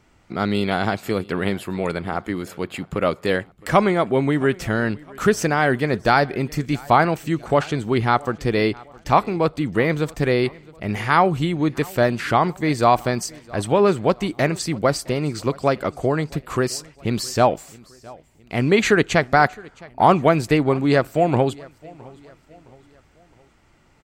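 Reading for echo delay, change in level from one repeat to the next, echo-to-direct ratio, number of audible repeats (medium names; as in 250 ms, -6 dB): 664 ms, -7.0 dB, -22.5 dB, 2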